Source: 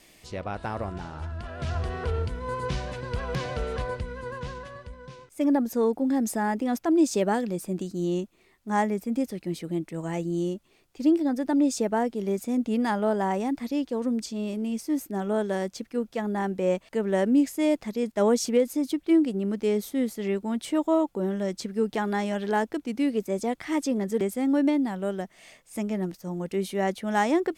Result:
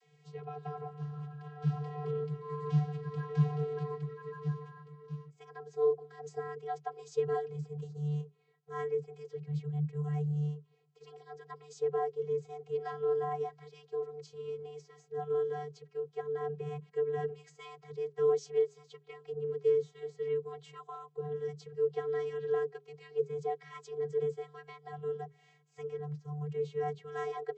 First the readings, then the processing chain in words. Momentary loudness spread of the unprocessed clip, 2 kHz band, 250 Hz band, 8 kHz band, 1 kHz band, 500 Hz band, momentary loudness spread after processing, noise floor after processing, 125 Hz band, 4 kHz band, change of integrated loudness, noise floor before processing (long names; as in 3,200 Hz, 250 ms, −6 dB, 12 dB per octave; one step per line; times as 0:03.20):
11 LU, −15.0 dB, below −15 dB, below −20 dB, −10.0 dB, −5.5 dB, 16 LU, −67 dBFS, −1.0 dB, below −15 dB, −8.5 dB, −61 dBFS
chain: spectral magnitudes quantised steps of 15 dB
channel vocoder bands 32, square 148 Hz
mains-hum notches 60/120/180/240/300/360/420 Hz
level −7.5 dB